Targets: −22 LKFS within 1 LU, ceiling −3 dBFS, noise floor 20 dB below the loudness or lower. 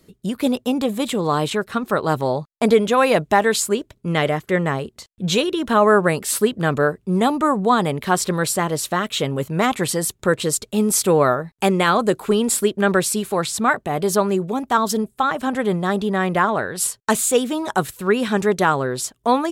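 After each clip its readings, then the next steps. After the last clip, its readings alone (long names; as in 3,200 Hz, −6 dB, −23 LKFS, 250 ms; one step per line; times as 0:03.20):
integrated loudness −20.0 LKFS; sample peak −4.0 dBFS; target loudness −22.0 LKFS
→ level −2 dB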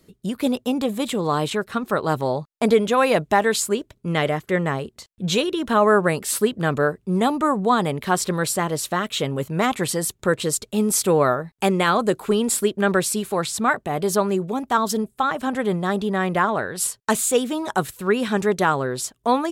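integrated loudness −22.0 LKFS; sample peak −6.0 dBFS; background noise floor −65 dBFS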